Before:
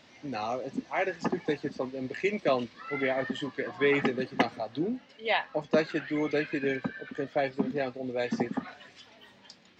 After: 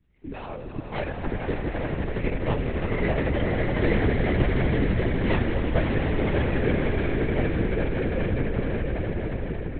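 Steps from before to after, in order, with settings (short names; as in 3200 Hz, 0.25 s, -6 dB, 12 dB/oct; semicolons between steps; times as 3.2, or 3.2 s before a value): tracing distortion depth 0.49 ms; expander -45 dBFS; LPF 2100 Hz 12 dB/oct; bell 810 Hz -11.5 dB 2.5 oct; in parallel at -2.5 dB: negative-ratio compressor -30 dBFS; on the sum: hum 60 Hz, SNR 34 dB; on a send: swelling echo 84 ms, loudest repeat 8, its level -8 dB; on the sum: LPC vocoder at 8 kHz whisper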